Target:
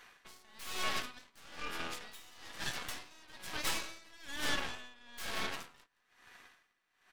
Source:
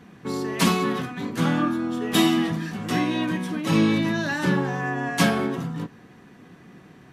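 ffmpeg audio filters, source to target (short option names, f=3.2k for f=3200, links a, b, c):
-af "highpass=1.3k,acompressor=threshold=-42dB:ratio=2,aeval=exprs='0.0631*(cos(1*acos(clip(val(0)/0.0631,-1,1)))-cos(1*PI/2))+0.0224*(cos(8*acos(clip(val(0)/0.0631,-1,1)))-cos(8*PI/2))':c=same,aecho=1:1:169:0.126,aeval=exprs='val(0)*pow(10,-25*(0.5-0.5*cos(2*PI*1.1*n/s))/20)':c=same,volume=1.5dB"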